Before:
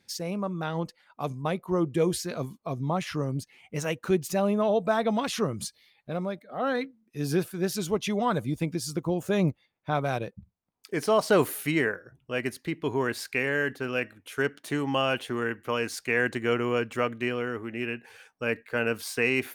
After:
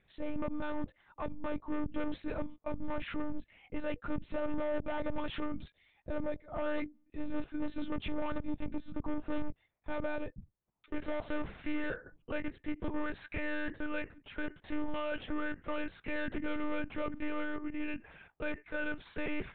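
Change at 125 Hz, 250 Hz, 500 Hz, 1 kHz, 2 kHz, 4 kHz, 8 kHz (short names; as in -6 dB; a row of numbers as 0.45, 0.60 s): -16.0 dB, -7.5 dB, -12.0 dB, -11.5 dB, -10.5 dB, -14.0 dB, under -40 dB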